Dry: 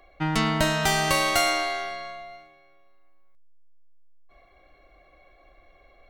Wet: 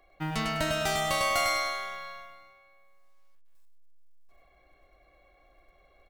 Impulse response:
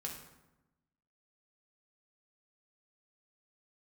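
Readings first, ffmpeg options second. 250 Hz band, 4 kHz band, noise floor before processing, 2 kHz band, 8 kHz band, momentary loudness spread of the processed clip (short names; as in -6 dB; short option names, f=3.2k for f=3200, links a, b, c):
-8.5 dB, -5.5 dB, -58 dBFS, -5.0 dB, -6.0 dB, 15 LU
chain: -filter_complex "[0:a]aecho=1:1:101|202|303|404:0.708|0.234|0.0771|0.0254,acrusher=bits=7:mode=log:mix=0:aa=0.000001,asplit=2[a][b];[1:a]atrim=start_sample=2205[c];[b][c]afir=irnorm=-1:irlink=0,volume=-13dB[d];[a][d]amix=inputs=2:normalize=0,volume=-8.5dB"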